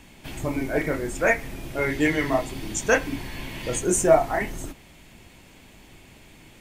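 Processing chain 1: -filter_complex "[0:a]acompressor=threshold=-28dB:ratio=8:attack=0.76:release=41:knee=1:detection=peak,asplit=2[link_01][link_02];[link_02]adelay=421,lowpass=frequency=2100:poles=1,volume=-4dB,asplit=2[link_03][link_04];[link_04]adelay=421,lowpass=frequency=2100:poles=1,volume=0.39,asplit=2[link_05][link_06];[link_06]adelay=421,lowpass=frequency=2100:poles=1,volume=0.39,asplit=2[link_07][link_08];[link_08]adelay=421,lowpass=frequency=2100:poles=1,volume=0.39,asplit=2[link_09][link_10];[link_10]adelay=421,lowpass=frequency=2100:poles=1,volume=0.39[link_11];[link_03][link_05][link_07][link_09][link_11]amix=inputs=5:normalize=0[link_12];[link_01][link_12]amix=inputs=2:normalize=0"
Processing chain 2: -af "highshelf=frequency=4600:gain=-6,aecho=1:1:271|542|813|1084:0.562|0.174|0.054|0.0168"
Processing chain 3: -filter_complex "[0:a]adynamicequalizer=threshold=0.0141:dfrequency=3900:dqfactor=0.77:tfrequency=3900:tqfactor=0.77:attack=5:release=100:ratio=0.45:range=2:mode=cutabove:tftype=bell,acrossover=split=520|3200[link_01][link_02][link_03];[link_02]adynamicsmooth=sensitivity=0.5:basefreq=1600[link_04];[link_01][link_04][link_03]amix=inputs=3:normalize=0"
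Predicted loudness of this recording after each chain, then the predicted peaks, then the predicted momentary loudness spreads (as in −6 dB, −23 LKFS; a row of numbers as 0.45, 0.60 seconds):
−32.5, −24.0, −25.5 LKFS; −19.0, −5.5, −6.5 dBFS; 17, 13, 15 LU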